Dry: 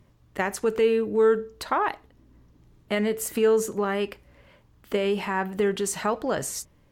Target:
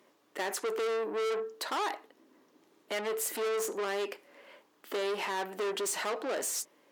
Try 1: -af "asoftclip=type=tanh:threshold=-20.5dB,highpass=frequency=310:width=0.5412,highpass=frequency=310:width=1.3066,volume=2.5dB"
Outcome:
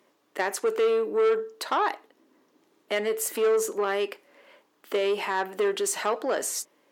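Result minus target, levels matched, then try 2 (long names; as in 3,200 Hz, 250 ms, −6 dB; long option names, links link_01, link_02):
soft clipping: distortion −8 dB
-af "asoftclip=type=tanh:threshold=-32dB,highpass=frequency=310:width=0.5412,highpass=frequency=310:width=1.3066,volume=2.5dB"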